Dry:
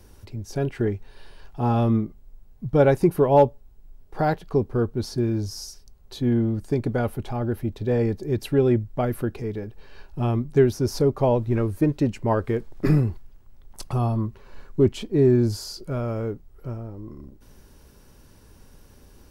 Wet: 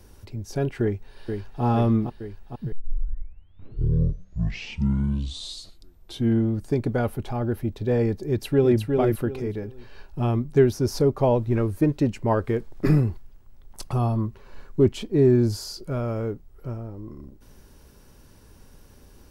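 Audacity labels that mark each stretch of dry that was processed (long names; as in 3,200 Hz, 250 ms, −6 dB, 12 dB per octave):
0.820000	1.630000	delay throw 460 ms, feedback 70%, level −5.5 dB
2.720000	2.720000	tape start 3.75 s
8.260000	8.790000	delay throw 360 ms, feedback 25%, level −4 dB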